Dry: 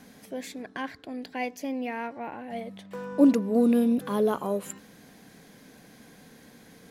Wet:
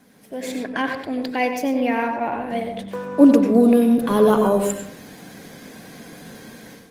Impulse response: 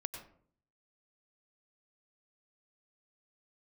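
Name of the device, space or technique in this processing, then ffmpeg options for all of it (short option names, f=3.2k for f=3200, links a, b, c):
far-field microphone of a smart speaker: -filter_complex "[1:a]atrim=start_sample=2205[a];[0:a][a]afir=irnorm=-1:irlink=0,highpass=f=93:p=1,dynaudnorm=f=280:g=3:m=13dB" -ar 48000 -c:a libopus -b:a 24k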